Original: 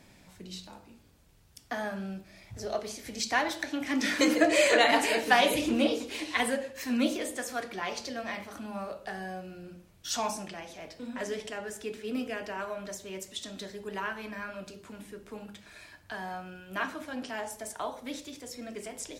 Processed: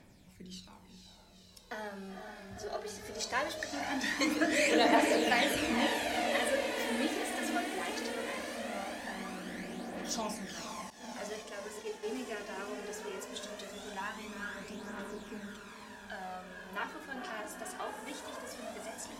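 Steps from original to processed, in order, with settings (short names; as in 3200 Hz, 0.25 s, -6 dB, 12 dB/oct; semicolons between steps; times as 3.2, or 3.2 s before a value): diffused feedback echo 0.489 s, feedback 76%, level -6 dB; 10.9–12.03 expander -33 dBFS; phaser 0.2 Hz, delay 2.9 ms, feedback 48%; gain -6.5 dB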